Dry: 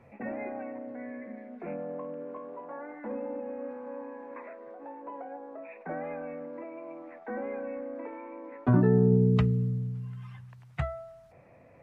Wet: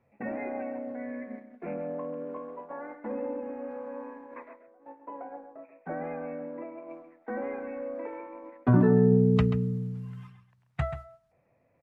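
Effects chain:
0:04.59–0:06.90: high-frequency loss of the air 220 metres
noise gate −42 dBFS, range −15 dB
slap from a distant wall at 23 metres, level −10 dB
level +1.5 dB

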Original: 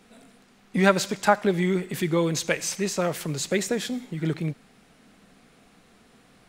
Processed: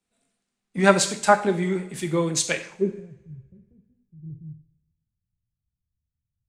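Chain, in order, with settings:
low-pass filter sweep 8,800 Hz → 100 Hz, 0:02.46–0:03.00
coupled-rooms reverb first 0.6 s, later 2.4 s, from −18 dB, DRR 6.5 dB
multiband upward and downward expander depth 70%
level −3 dB

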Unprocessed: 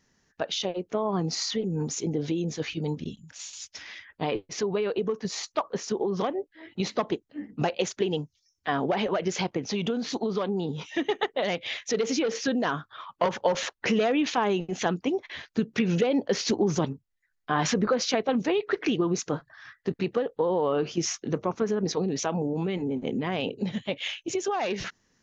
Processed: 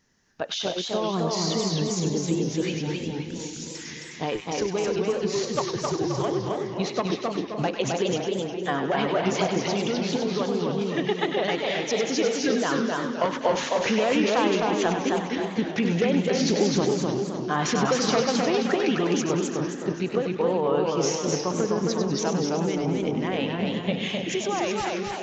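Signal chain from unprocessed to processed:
echo with a time of its own for lows and highs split 1,100 Hz, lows 299 ms, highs 98 ms, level −6.5 dB
0:05.35–0:06.28: frequency shifter −51 Hz
feedback echo with a swinging delay time 260 ms, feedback 44%, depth 142 cents, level −3 dB

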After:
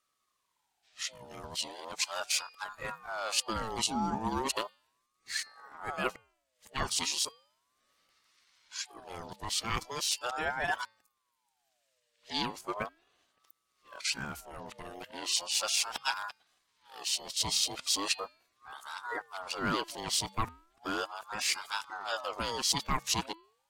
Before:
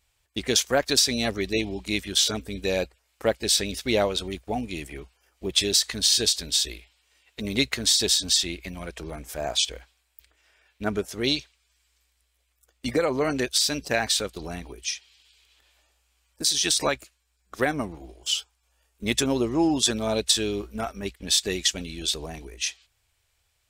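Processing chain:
played backwards from end to start
hum removal 332.7 Hz, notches 12
ring modulator whose carrier an LFO sweeps 880 Hz, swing 40%, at 0.37 Hz
level −6 dB

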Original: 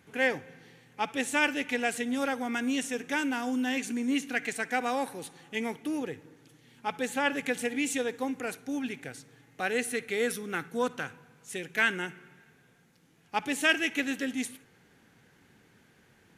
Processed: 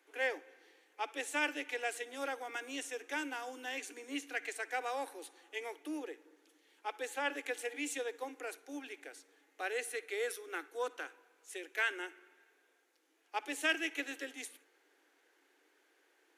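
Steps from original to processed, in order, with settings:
Butterworth high-pass 290 Hz 96 dB per octave
level −7.5 dB

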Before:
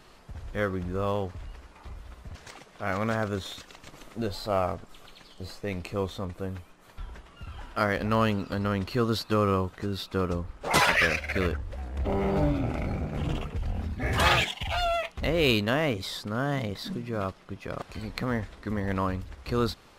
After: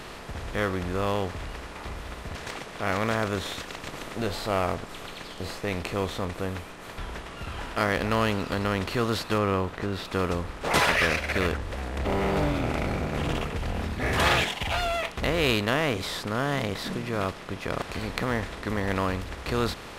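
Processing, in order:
compressor on every frequency bin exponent 0.6
0:09.38–0:10.05: high-shelf EQ 4,000 Hz −8.5 dB
level −3 dB

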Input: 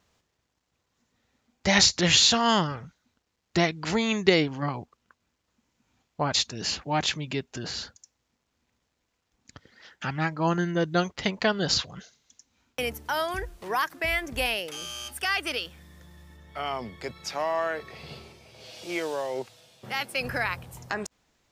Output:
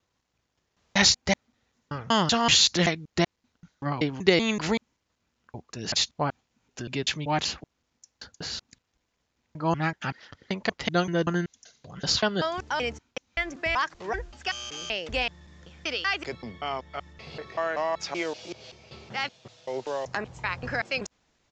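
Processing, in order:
slices reordered back to front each 191 ms, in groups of 5
downsampling to 16,000 Hz

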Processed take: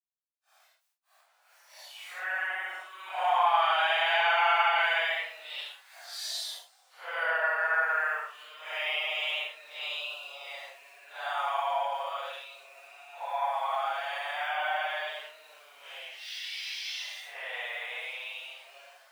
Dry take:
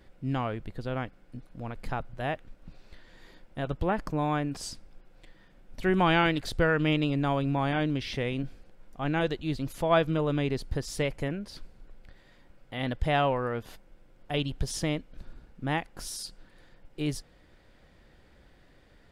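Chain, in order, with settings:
centre clipping without the shift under −48 dBFS
Butterworth high-pass 660 Hz 48 dB per octave
extreme stretch with random phases 6.5×, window 0.05 s, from 0:05.51

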